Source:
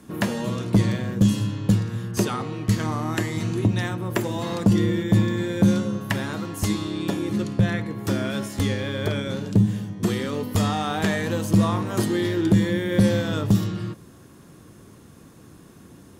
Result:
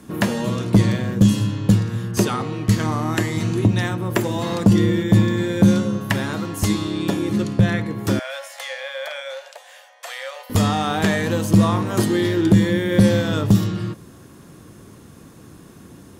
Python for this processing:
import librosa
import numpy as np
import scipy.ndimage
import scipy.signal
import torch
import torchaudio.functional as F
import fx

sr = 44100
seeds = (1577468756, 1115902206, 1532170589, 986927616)

y = fx.cheby_ripple_highpass(x, sr, hz=520.0, ripple_db=6, at=(8.19, 10.5))
y = y * librosa.db_to_amplitude(4.0)